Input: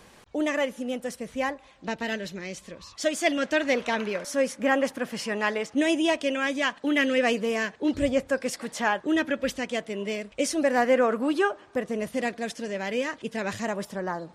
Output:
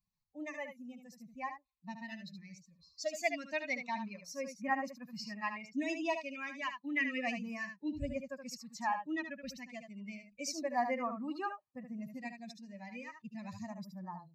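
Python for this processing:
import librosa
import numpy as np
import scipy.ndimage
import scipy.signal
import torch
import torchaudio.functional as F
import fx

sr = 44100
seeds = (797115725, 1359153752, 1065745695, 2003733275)

y = fx.bin_expand(x, sr, power=2.0)
y = fx.fixed_phaser(y, sr, hz=2200.0, stages=8)
y = y + 10.0 ** (-8.0 / 20.0) * np.pad(y, (int(74 * sr / 1000.0), 0))[:len(y)]
y = F.gain(torch.from_numpy(y), -3.5).numpy()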